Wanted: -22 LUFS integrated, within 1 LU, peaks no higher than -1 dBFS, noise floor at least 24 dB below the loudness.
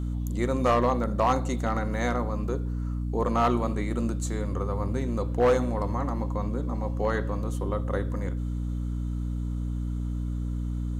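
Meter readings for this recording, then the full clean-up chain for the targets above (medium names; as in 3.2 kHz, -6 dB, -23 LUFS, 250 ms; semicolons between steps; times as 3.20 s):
clipped samples 0.4%; clipping level -15.5 dBFS; hum 60 Hz; highest harmonic 300 Hz; hum level -27 dBFS; loudness -28.5 LUFS; peak level -15.5 dBFS; loudness target -22.0 LUFS
-> clip repair -15.5 dBFS; hum notches 60/120/180/240/300 Hz; trim +6.5 dB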